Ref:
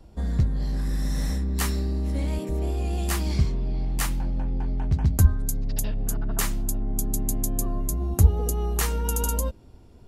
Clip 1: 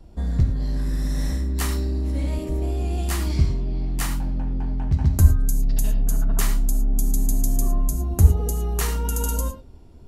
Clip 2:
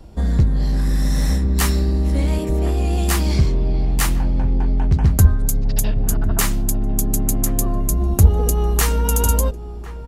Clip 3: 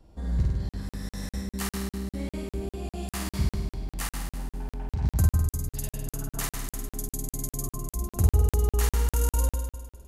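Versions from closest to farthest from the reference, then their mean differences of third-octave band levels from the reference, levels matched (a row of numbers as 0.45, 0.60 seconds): 2, 1, 3; 1.5, 2.5, 6.5 decibels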